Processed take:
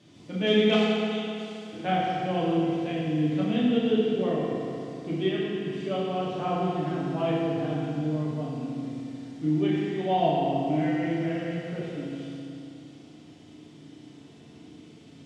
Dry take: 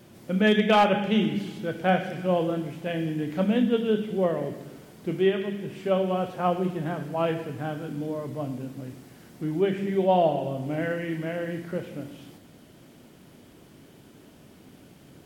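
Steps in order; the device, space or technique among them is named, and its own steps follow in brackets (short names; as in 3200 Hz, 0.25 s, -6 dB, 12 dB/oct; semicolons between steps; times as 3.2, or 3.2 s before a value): 0.75–1.73 pre-emphasis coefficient 0.97; car door speaker (speaker cabinet 96–7600 Hz, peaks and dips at 510 Hz -7 dB, 910 Hz -6 dB, 1500 Hz -7 dB, 3600 Hz +5 dB); FDN reverb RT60 2.8 s, high-frequency decay 0.7×, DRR -6 dB; gain -5.5 dB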